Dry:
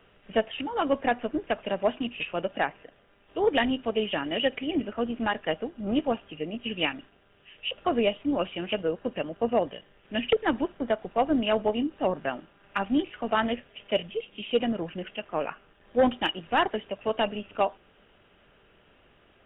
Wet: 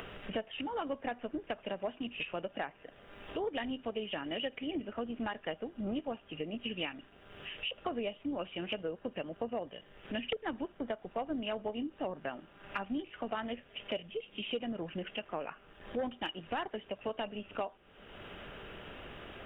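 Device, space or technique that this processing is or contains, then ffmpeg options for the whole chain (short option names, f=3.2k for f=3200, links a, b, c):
upward and downward compression: -af "acompressor=mode=upward:threshold=-37dB:ratio=2.5,acompressor=threshold=-37dB:ratio=4,volume=1dB"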